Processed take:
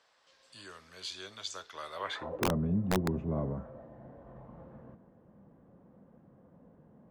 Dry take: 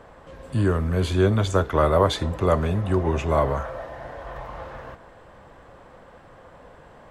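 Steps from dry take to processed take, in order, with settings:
band-pass filter sweep 4,900 Hz → 200 Hz, 0:01.93–0:02.51
wrap-around overflow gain 21 dB

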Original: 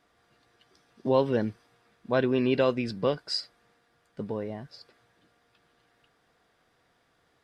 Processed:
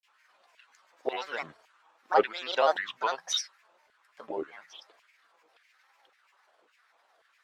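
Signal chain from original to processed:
mains-hum notches 50/100/150 Hz
auto-filter high-pass saw down 1.8 Hz 570–2,000 Hz
granular cloud, spray 19 ms, pitch spread up and down by 7 semitones
pitch vibrato 0.54 Hz 31 cents
level +1 dB

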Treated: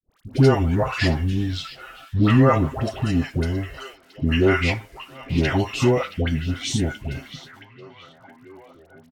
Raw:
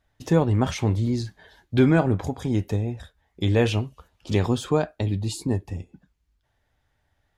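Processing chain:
parametric band 2,000 Hz +6 dB 2.4 octaves
comb filter 6.1 ms, depth 52%
in parallel at 0 dB: downward compressor, threshold −26 dBFS, peak gain reduction 15.5 dB
on the sum: bit reduction 9 bits
all-pass dispersion highs, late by 87 ms, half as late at 1,000 Hz
speed change −19%
on a send: echo through a band-pass that steps 674 ms, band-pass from 3,600 Hz, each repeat −0.7 octaves, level −11 dB
on the sum: level −1.5 dB

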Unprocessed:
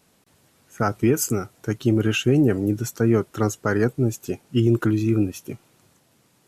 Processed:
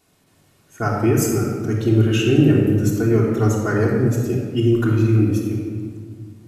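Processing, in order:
rectangular room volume 2,600 cubic metres, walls mixed, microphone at 3.3 metres
level −3 dB

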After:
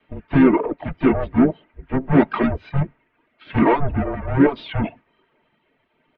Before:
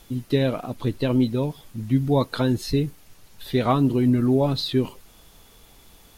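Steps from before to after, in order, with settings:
tube saturation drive 28 dB, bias 0.5
low-shelf EQ 370 Hz −10 dB
single-sideband voice off tune −280 Hz 320–2,600 Hz
on a send at −2 dB: convolution reverb, pre-delay 3 ms
on the sum: reverb reduction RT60 0.99 s
dynamic equaliser 130 Hz, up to +3 dB, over −51 dBFS, Q 4.8
in parallel at +3 dB: brickwall limiter −25.5 dBFS, peak gain reduction 7 dB
on the sum: pitch-shifted copies added −7 semitones −16 dB, +4 semitones −12 dB
multiband upward and downward expander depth 70%
level +7.5 dB

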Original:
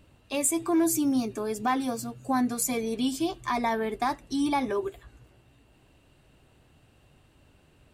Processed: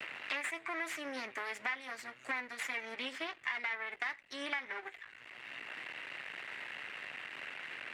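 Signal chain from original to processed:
half-wave rectification
resonant band-pass 2,000 Hz, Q 4.3
multiband upward and downward compressor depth 100%
level +9 dB

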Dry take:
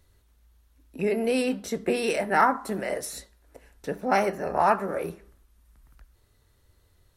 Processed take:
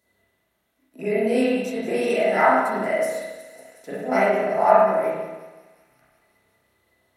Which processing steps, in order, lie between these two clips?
Chebyshev high-pass filter 200 Hz, order 2
high-shelf EQ 6,200 Hz +6 dB
hollow resonant body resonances 650/2,000 Hz, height 16 dB, ringing for 95 ms
on a send: delay with a high-pass on its return 182 ms, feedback 77%, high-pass 5,300 Hz, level −10.5 dB
on the sum: spring reverb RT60 1.2 s, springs 31/46 ms, chirp 30 ms, DRR −9 dB
every ending faded ahead of time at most 160 dB per second
level −7 dB

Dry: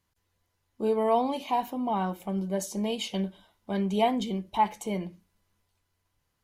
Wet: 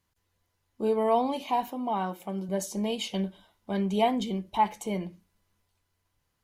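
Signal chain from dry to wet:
0:01.70–0:02.49: high-pass filter 230 Hz 6 dB per octave

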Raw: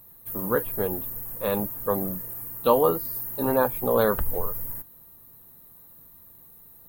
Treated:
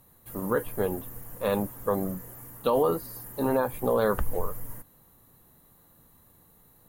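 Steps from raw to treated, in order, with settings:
low-pass filter 10,000 Hz 12 dB per octave
brickwall limiter −14.5 dBFS, peak gain reduction 8 dB

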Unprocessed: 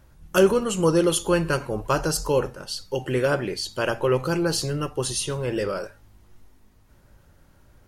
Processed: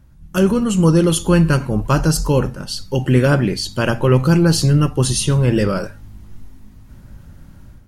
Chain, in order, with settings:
automatic gain control gain up to 10 dB
low shelf with overshoot 310 Hz +8 dB, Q 1.5
level −2.5 dB

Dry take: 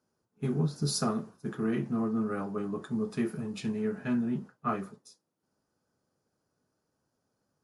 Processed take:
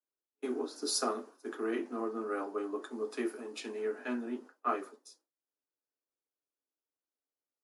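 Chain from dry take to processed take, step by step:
Butterworth high-pass 260 Hz 72 dB per octave
noise gate with hold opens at −54 dBFS

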